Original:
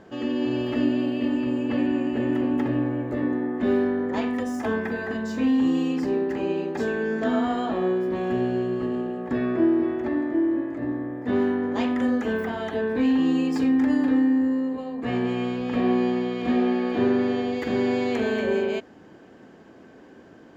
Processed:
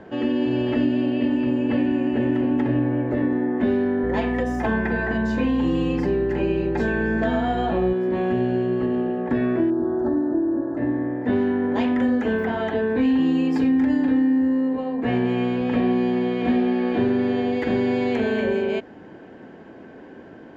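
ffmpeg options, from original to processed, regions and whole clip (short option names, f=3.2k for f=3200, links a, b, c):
-filter_complex "[0:a]asettb=1/sr,asplit=3[a][b][c];[a]atrim=end=4.034[d];[b]atrim=start=4.03:end=7.93,asetpts=PTS-STARTPTS,afade=t=in:d=0.004:c=qsin,afade=t=out:st=3.896:d=0.004:c=qsin,aecho=1:1:5.7:0.49,atrim=end_sample=171990,aeval=exprs='val(0)+0.0158*(sin(2*PI*60*n/s)+sin(2*PI*2*60*n/s)/2+sin(2*PI*3*60*n/s)/3+sin(2*PI*4*60*n/s)/4+sin(2*PI*5*60*n/s)/5)':c=same[e];[c]atrim=start=7.926[f];[d][e]acrossfade=d=0.004:c1=hsin:c2=qsin[g];[g][f]acrossfade=d=0.004:c1=qsin:c2=hsin,asettb=1/sr,asplit=3[h][i][j];[h]atrim=end=9.704[k];[i]atrim=start=9.7:end=10.77,asetpts=PTS-STARTPTS,afade=t=in:d=0.004:c=qsin,afade=t=out:st=1.066:d=0.004:c=qsin,asuperstop=centerf=2500:order=8:qfactor=1.1,equalizer=f=3.9k:t=o:w=1.5:g=-5,asplit=2[l][m];[m]adelay=38,volume=-12.5dB[n];[l][n]amix=inputs=2:normalize=0,atrim=end_sample=47187[o];[j]atrim=start=10.766[p];[k][o]acrossfade=d=0.004:c1=hsin:c2=qsin[q];[q][p]acrossfade=d=0.004:c1=qsin:c2=hsin,bass=f=250:g=-1,treble=f=4k:g=-14,bandreject=f=1.2k:w=7.9,acrossover=split=190|3000[r][s][t];[s]acompressor=threshold=-27dB:ratio=6[u];[r][u][t]amix=inputs=3:normalize=0,volume=6.5dB"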